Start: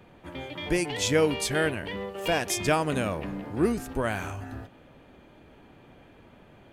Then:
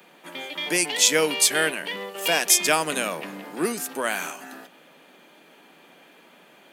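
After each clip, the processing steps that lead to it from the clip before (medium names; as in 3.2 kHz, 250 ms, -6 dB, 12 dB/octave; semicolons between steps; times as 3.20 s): elliptic high-pass 160 Hz, stop band 40 dB; tilt EQ +3.5 dB/octave; trim +4 dB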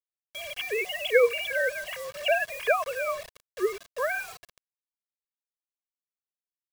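formants replaced by sine waves; bit crusher 6-bit; comb 1.8 ms, depth 74%; trim -7 dB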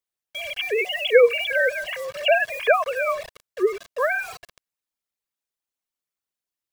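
resonances exaggerated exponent 1.5; trim +6 dB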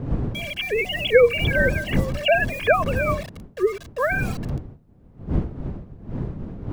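wind noise 180 Hz -28 dBFS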